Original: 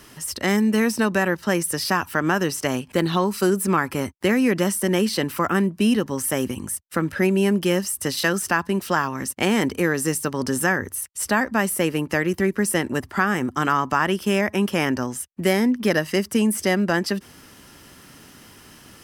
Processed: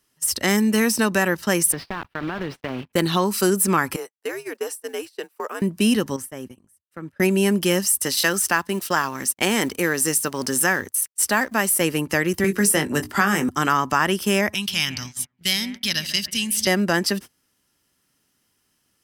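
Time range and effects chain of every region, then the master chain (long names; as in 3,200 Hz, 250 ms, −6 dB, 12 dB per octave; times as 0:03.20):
0:01.72–0:02.93: one scale factor per block 3 bits + high-frequency loss of the air 390 metres + downward compressor 8 to 1, threshold −23 dBFS
0:03.96–0:05.62: frequency shifter −110 Hz + log-companded quantiser 8 bits + four-pole ladder high-pass 390 Hz, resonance 60%
0:06.16–0:07.20: high-shelf EQ 2,600 Hz −9.5 dB + downward compressor 2 to 1, threshold −37 dBFS + high-pass filter 59 Hz
0:07.98–0:11.81: mu-law and A-law mismatch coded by A + low-shelf EQ 150 Hz −8.5 dB
0:12.44–0:13.49: mains-hum notches 60/120/180/240/300/360/420 Hz + double-tracking delay 20 ms −8 dB + multiband upward and downward compressor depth 40%
0:14.54–0:16.67: drawn EQ curve 110 Hz 0 dB, 260 Hz −13 dB, 450 Hz −23 dB, 810 Hz −14 dB, 1,800 Hz −7 dB, 3,700 Hz +11 dB, 8,200 Hz −3 dB + bucket-brigade delay 142 ms, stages 2,048, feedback 52%, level −12 dB
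whole clip: noise gate −33 dBFS, range −26 dB; high-shelf EQ 3,500 Hz +8.5 dB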